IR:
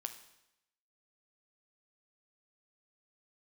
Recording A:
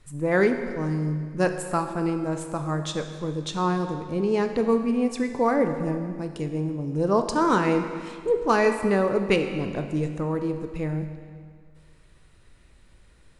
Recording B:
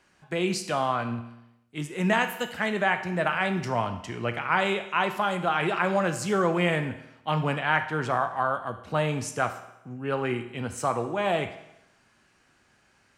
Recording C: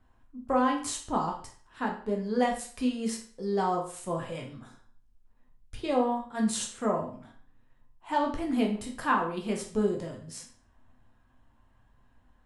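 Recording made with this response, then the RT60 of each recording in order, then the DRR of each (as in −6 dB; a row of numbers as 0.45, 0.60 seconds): B; 1.9, 0.85, 0.45 seconds; 6.0, 7.5, 0.0 decibels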